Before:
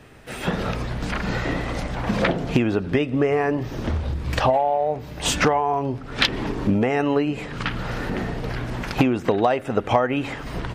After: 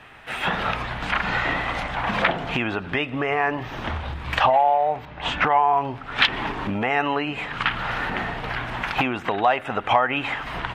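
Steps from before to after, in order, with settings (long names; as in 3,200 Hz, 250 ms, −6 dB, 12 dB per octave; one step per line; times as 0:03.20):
0:05.05–0:05.50: head-to-tape spacing loss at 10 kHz 25 dB
in parallel at +3 dB: brickwall limiter −14 dBFS, peak gain reduction 11 dB
on the sum: flat-topped bell 1,600 Hz +12.5 dB 2.7 octaves
level −13.5 dB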